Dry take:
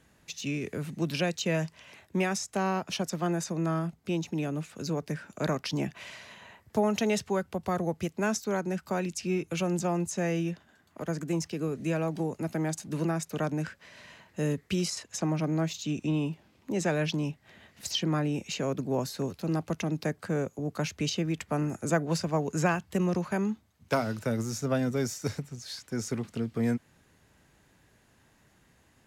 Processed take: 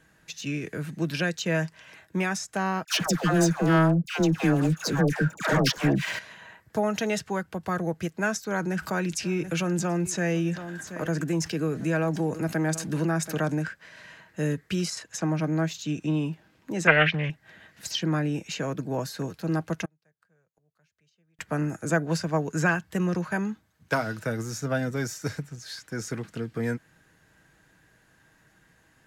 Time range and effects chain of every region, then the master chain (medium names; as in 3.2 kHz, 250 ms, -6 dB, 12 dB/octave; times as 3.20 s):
2.84–6.19 s: waveshaping leveller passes 3 + transient shaper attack 0 dB, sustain -7 dB + phase dispersion lows, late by 118 ms, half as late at 880 Hz
8.51–13.59 s: delay 731 ms -21.5 dB + level flattener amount 50%
16.87–17.30 s: resonant low-pass 2.2 kHz, resonance Q 9.3 + comb 1.7 ms, depth 88% + loudspeaker Doppler distortion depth 0.35 ms
19.85–21.39 s: peaking EQ 280 Hz -13.5 dB 0.5 oct + inverted gate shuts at -35 dBFS, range -38 dB
whole clip: peaking EQ 1.6 kHz +8.5 dB 0.41 oct; comb 6.3 ms, depth 34%